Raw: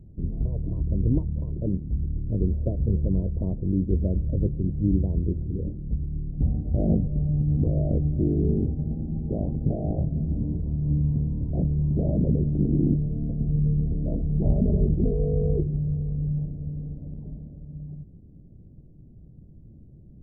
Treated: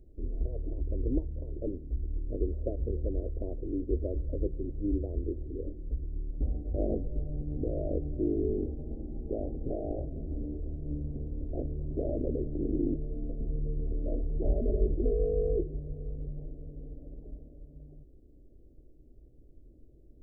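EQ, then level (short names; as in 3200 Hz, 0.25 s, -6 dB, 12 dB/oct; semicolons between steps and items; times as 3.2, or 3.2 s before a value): bell 100 Hz -14 dB 1 oct; fixed phaser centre 440 Hz, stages 4; 0.0 dB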